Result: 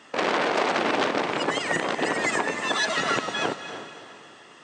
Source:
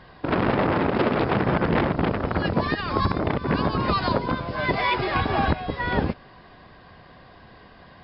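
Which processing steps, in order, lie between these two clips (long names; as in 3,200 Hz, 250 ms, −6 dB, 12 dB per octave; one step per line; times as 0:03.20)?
high-pass filter 160 Hz 12 dB per octave
feedback delay with all-pass diffusion 517 ms, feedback 42%, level −10 dB
wrong playback speed 45 rpm record played at 78 rpm
level −1.5 dB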